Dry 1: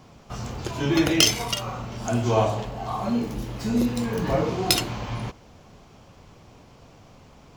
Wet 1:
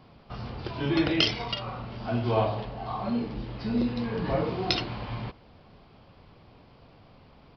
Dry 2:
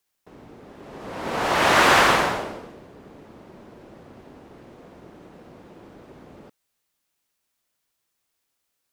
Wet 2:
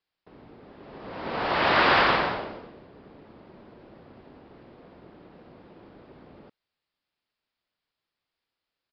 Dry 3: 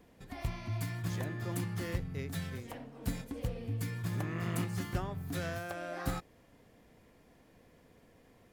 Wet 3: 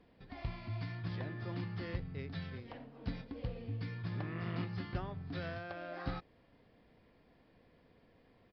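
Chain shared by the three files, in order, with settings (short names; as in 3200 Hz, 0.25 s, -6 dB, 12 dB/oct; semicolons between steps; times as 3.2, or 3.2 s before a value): downsampling 11025 Hz; gain -4 dB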